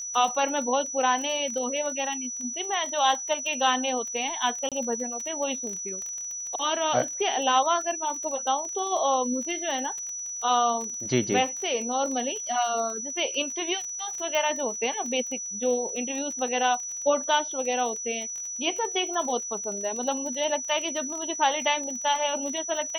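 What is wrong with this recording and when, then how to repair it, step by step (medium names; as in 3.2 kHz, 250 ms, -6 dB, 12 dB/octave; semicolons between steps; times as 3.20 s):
crackle 29 per s -32 dBFS
whine 5.9 kHz -32 dBFS
4.69–4.72 s: dropout 27 ms
14.35 s: pop -14 dBFS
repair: de-click; band-stop 5.9 kHz, Q 30; interpolate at 4.69 s, 27 ms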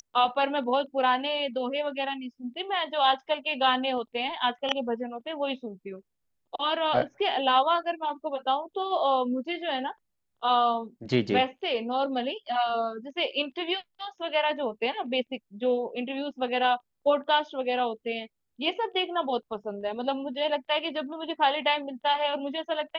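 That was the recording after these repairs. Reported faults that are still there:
nothing left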